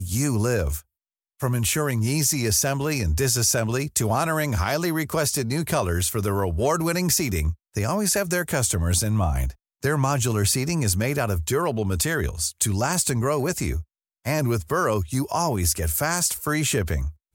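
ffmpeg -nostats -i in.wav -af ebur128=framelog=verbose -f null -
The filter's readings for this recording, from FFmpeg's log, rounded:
Integrated loudness:
  I:         -23.2 LUFS
  Threshold: -33.4 LUFS
Loudness range:
  LRA:         2.1 LU
  Threshold: -43.3 LUFS
  LRA low:   -24.2 LUFS
  LRA high:  -22.2 LUFS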